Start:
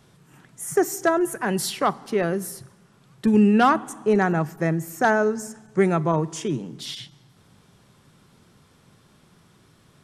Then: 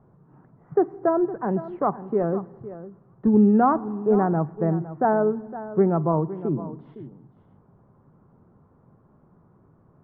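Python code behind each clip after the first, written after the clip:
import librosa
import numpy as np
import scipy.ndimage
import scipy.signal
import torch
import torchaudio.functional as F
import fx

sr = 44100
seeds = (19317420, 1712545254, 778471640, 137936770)

y = scipy.signal.sosfilt(scipy.signal.butter(4, 1100.0, 'lowpass', fs=sr, output='sos'), x)
y = y + 10.0 ** (-14.5 / 20.0) * np.pad(y, (int(511 * sr / 1000.0), 0))[:len(y)]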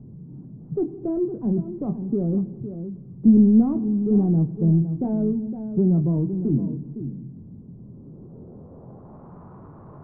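y = fx.chorus_voices(x, sr, voices=2, hz=0.3, base_ms=23, depth_ms=1.9, mix_pct=25)
y = fx.power_curve(y, sr, exponent=0.7)
y = fx.filter_sweep_lowpass(y, sr, from_hz=240.0, to_hz=1100.0, start_s=7.72, end_s=9.42, q=1.5)
y = y * 10.0 ** (1.0 / 20.0)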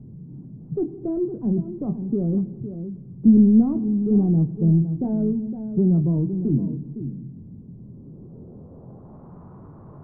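y = fx.low_shelf(x, sr, hz=480.0, db=5.5)
y = y * 10.0 ** (-4.0 / 20.0)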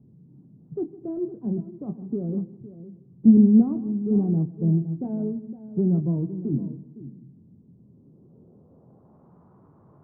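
y = fx.highpass(x, sr, hz=140.0, slope=6)
y = y + 10.0 ** (-15.0 / 20.0) * np.pad(y, (int(156 * sr / 1000.0), 0))[:len(y)]
y = fx.upward_expand(y, sr, threshold_db=-34.0, expansion=1.5)
y = y * 10.0 ** (2.0 / 20.0)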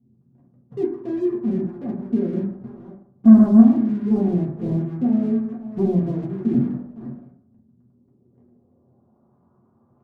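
y = fx.leveller(x, sr, passes=2)
y = fx.rev_fdn(y, sr, rt60_s=0.63, lf_ratio=0.95, hf_ratio=0.25, size_ms=25.0, drr_db=-4.0)
y = y * 10.0 ** (-9.0 / 20.0)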